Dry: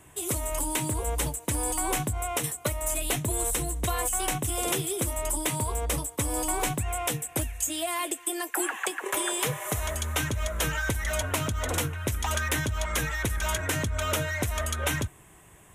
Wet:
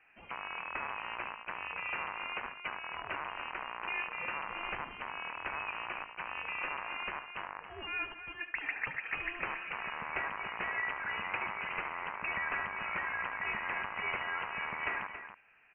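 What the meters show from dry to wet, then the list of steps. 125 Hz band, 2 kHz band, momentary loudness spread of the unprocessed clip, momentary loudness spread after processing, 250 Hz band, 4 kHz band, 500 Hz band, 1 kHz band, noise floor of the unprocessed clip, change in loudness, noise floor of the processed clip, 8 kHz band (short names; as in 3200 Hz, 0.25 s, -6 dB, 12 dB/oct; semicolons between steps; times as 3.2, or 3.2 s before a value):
-26.5 dB, -1.5 dB, 3 LU, 6 LU, -19.0 dB, -12.0 dB, -15.5 dB, -5.0 dB, -53 dBFS, -8.5 dB, -53 dBFS, under -40 dB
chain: rattling part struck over -36 dBFS, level -20 dBFS; HPF 970 Hz 24 dB/oct; air absorption 470 m; loudspeakers at several distances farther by 25 m -11 dB, 95 m -10 dB; inverted band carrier 3500 Hz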